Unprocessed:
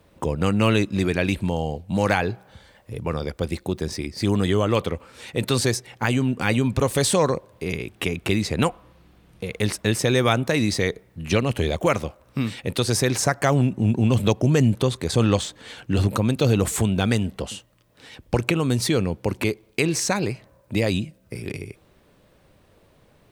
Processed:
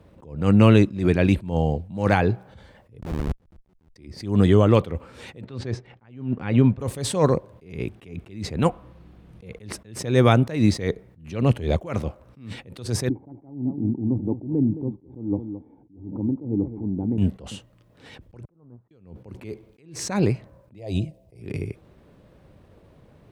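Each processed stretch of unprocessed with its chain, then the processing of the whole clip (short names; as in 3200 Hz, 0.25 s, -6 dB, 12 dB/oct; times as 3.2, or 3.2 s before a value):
3.01–3.96 delta modulation 64 kbps, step -26.5 dBFS + LPF 1500 Hz 6 dB/oct + Schmitt trigger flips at -26.5 dBFS
5.41–6.8 G.711 law mismatch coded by A + LPF 3200 Hz
13.09–17.18 vocal tract filter u + echo 0.217 s -12.5 dB
18.45–18.91 level-crossing sampler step -31 dBFS + gate -16 dBFS, range -33 dB + LPF 1200 Hz 24 dB/oct
20.78–21.41 fixed phaser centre 580 Hz, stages 4 + small resonant body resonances 260/680 Hz, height 11 dB, ringing for 35 ms
whole clip: HPF 87 Hz 6 dB/oct; tilt -2.5 dB/oct; attack slew limiter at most 120 dB/s; gain +1 dB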